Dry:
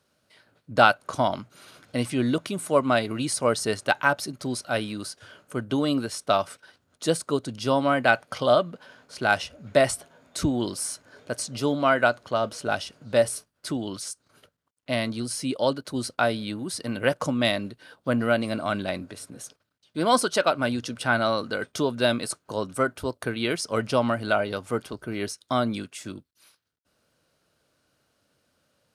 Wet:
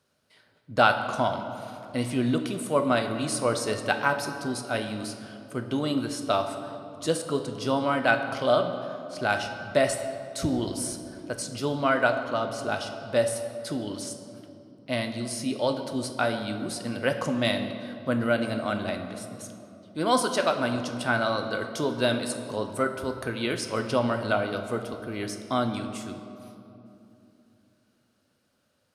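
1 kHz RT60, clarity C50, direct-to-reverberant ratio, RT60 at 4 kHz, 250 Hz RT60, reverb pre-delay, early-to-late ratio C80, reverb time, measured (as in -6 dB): 2.7 s, 8.0 dB, 5.5 dB, 1.7 s, 3.7 s, 8 ms, 9.0 dB, 3.0 s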